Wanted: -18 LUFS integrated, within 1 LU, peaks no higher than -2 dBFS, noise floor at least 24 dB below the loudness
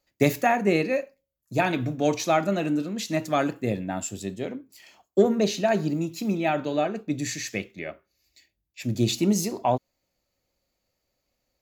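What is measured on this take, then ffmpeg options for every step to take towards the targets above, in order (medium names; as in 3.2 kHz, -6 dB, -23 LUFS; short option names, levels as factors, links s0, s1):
loudness -26.0 LUFS; peak level -7.0 dBFS; loudness target -18.0 LUFS
-> -af "volume=2.51,alimiter=limit=0.794:level=0:latency=1"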